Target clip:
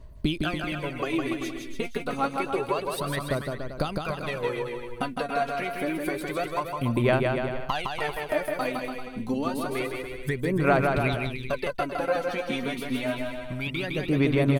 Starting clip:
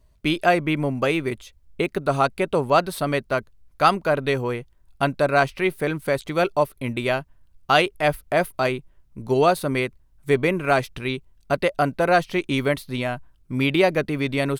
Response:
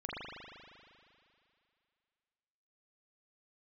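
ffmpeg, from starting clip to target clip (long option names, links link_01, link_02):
-filter_complex "[0:a]acompressor=threshold=-32dB:ratio=5,aphaser=in_gain=1:out_gain=1:delay=4.3:decay=0.72:speed=0.28:type=sinusoidal,asplit=2[link_01][link_02];[link_02]aecho=0:1:160|288|390.4|472.3|537.9:0.631|0.398|0.251|0.158|0.1[link_03];[link_01][link_03]amix=inputs=2:normalize=0,volume=1.5dB"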